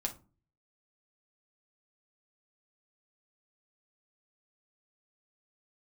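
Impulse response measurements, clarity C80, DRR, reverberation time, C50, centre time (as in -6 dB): 21.5 dB, 1.5 dB, 0.35 s, 14.0 dB, 9 ms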